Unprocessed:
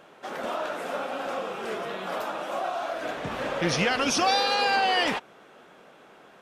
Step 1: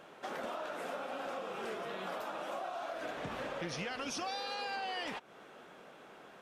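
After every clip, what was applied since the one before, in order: compressor 6:1, threshold -35 dBFS, peak gain reduction 14.5 dB; gain -2.5 dB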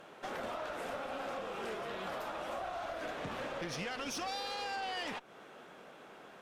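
tube stage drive 35 dB, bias 0.5; gain +3 dB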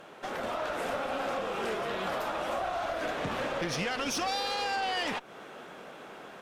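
AGC gain up to 3.5 dB; gain +4 dB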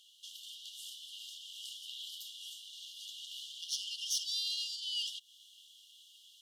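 brick-wall FIR high-pass 2800 Hz; gain +1 dB

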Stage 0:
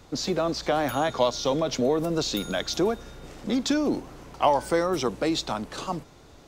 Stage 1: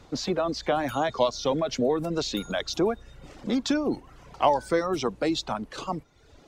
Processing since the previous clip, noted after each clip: high shelf 9400 Hz -11.5 dB; reverb removal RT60 0.79 s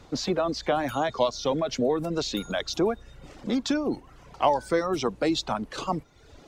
vocal rider within 4 dB 2 s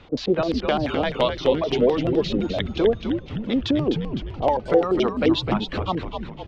LFO low-pass square 5.8 Hz 480–3000 Hz; frequency-shifting echo 0.255 s, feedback 54%, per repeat -120 Hz, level -6 dB; gain +1.5 dB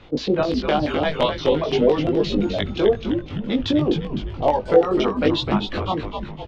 doubler 20 ms -3 dB; on a send at -21 dB: reverb RT60 0.35 s, pre-delay 6 ms

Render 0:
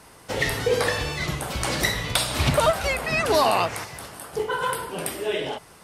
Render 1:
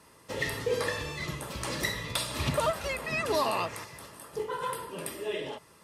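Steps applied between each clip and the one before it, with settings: notch comb 750 Hz; gain -7 dB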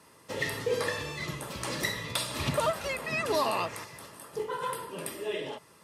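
HPF 89 Hz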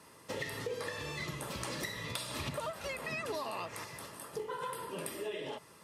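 compressor 6:1, threshold -36 dBFS, peak gain reduction 12.5 dB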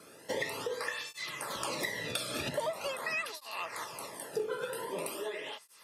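tape flanging out of phase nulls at 0.44 Hz, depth 1.1 ms; gain +6.5 dB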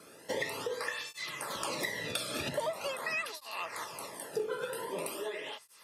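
notches 60/120 Hz

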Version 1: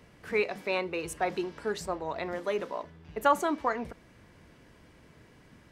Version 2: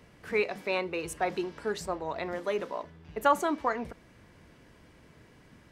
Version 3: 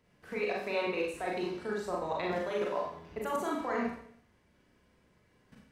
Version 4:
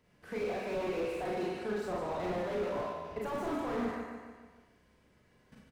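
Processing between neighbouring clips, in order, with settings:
nothing audible
level quantiser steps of 18 dB; Schroeder reverb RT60 0.6 s, combs from 30 ms, DRR -3 dB
on a send: feedback echo 0.146 s, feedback 53%, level -8.5 dB; on the sum: slew limiter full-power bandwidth 15 Hz

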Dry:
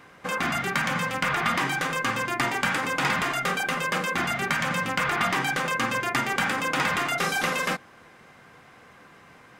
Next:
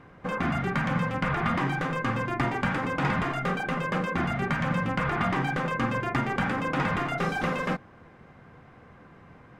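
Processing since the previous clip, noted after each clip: LPF 1100 Hz 6 dB/oct; low shelf 160 Hz +11.5 dB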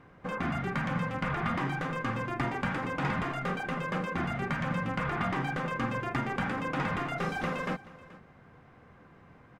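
echo 0.43 s -19.5 dB; gain -4.5 dB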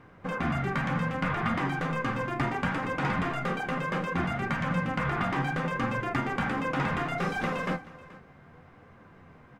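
flange 0.67 Hz, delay 8.8 ms, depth 6.8 ms, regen +62%; on a send at -17 dB: reverb RT60 0.45 s, pre-delay 4 ms; on the sum: gain +6.5 dB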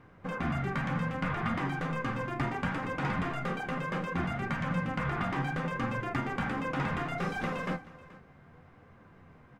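low shelf 160 Hz +3.5 dB; gain -4 dB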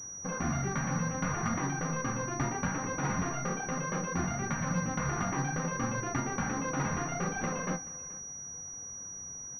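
air absorption 96 m; pulse-width modulation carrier 5800 Hz

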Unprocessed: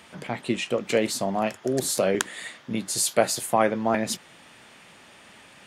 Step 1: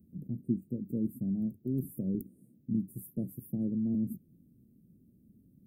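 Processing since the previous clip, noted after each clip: inverse Chebyshev band-stop 990–5800 Hz, stop band 70 dB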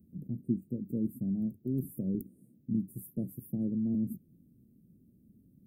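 nothing audible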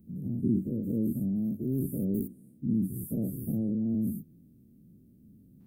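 spectral dilation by 0.12 s

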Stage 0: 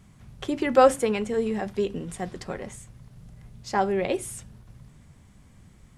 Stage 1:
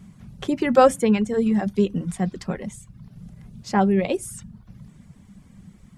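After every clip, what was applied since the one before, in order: bell 190 Hz +12.5 dB 0.63 oct; reverb removal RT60 0.64 s; gain +2 dB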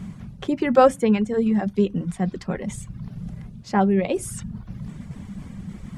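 high shelf 5400 Hz -8.5 dB; reverse; upward compressor, threshold -23 dBFS; reverse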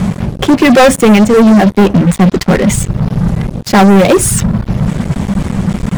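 sample leveller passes 5; in parallel at -3 dB: overloaded stage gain 13 dB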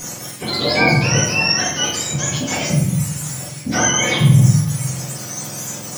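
spectrum mirrored in octaves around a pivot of 1100 Hz; reverb RT60 0.95 s, pre-delay 4 ms, DRR -4 dB; gain -12 dB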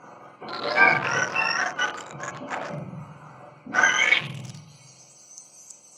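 Wiener smoothing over 25 samples; band-pass sweep 1400 Hz -> 7200 Hz, 3.68–5.28; gain +7 dB

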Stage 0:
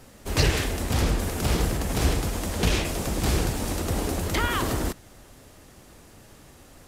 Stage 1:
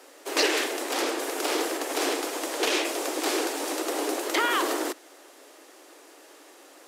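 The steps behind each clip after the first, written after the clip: steep high-pass 290 Hz 72 dB/oct; high shelf 10000 Hz -4.5 dB; gain +2.5 dB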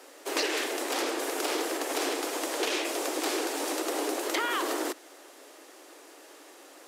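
compressor 3:1, threshold -27 dBFS, peak gain reduction 6.5 dB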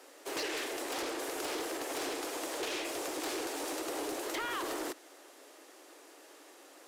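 soft clip -26 dBFS, distortion -15 dB; gain -4.5 dB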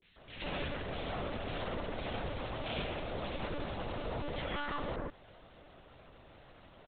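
three bands offset in time lows, highs, mids 30/170 ms, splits 230/1900 Hz; monotone LPC vocoder at 8 kHz 290 Hz; gain +1 dB

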